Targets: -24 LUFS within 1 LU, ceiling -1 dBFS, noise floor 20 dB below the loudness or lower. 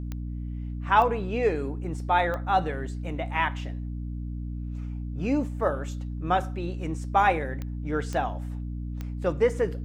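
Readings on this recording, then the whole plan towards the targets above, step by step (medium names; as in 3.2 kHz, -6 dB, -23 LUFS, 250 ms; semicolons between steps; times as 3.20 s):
clicks found 6; hum 60 Hz; highest harmonic 300 Hz; hum level -31 dBFS; loudness -28.0 LUFS; peak level -8.0 dBFS; loudness target -24.0 LUFS
-> de-click; de-hum 60 Hz, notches 5; trim +4 dB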